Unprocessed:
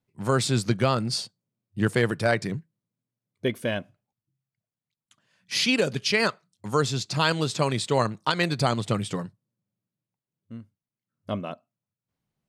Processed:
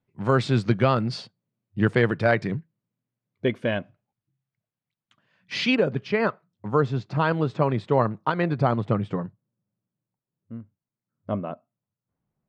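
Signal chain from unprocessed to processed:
low-pass filter 2,800 Hz 12 dB per octave, from 0:05.75 1,400 Hz
level +2.5 dB

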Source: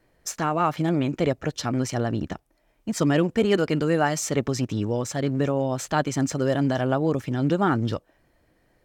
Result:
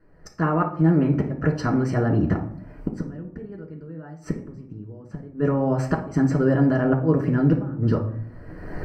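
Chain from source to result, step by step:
camcorder AGC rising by 32 dB per second
0:02.97–0:05.30: low-shelf EQ 460 Hz +8.5 dB
gate with flip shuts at −12 dBFS, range −27 dB
moving average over 13 samples
convolution reverb RT60 0.60 s, pre-delay 3 ms, DRR 0.5 dB

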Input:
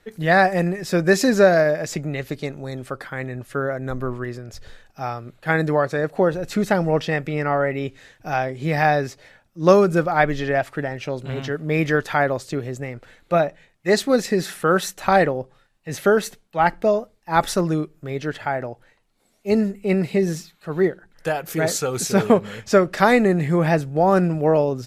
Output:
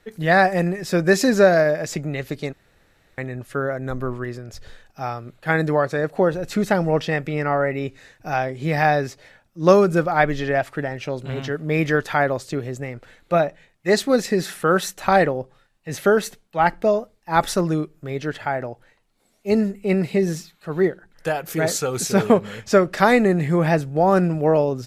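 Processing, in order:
0:02.53–0:03.18: fill with room tone
0:07.49–0:08.36: notch filter 3,200 Hz, Q 8.2

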